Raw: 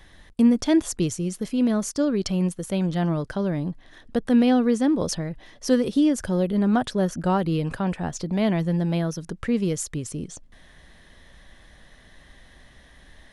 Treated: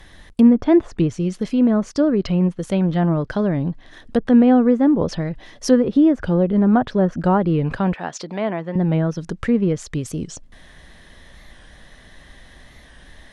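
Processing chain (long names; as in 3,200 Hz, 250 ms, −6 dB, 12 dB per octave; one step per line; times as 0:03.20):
treble cut that deepens with the level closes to 1,500 Hz, closed at −18.5 dBFS
0:07.94–0:08.76: meter weighting curve A
wow of a warped record 45 rpm, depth 100 cents
level +5.5 dB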